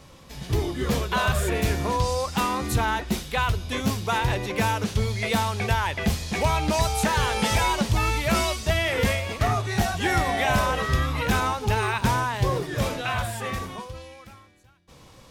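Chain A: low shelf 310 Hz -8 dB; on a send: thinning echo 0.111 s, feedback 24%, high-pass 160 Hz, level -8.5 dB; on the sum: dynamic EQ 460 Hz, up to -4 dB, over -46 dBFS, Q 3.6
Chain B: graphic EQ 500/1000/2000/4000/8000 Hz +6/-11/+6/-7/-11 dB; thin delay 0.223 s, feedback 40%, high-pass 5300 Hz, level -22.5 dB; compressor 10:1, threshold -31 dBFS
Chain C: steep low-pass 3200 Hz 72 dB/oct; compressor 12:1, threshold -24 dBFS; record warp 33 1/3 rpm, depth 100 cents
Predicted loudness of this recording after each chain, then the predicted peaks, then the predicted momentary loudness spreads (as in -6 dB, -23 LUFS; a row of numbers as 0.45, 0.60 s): -26.5, -35.5, -29.5 LUFS; -11.5, -20.0, -15.0 dBFS; 7, 3, 4 LU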